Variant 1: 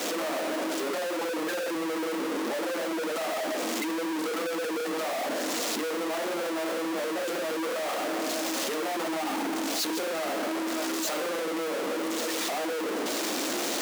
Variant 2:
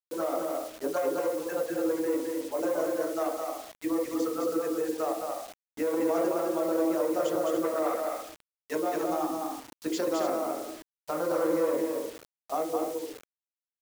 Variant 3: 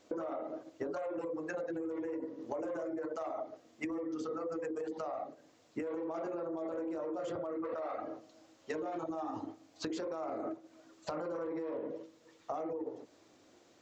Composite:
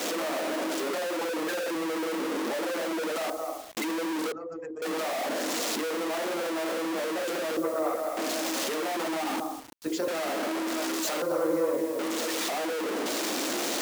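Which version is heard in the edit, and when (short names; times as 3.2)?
1
3.3–3.77 from 2
4.32–4.82 from 3
7.57–8.17 from 2
9.4–10.08 from 2
11.22–11.99 from 2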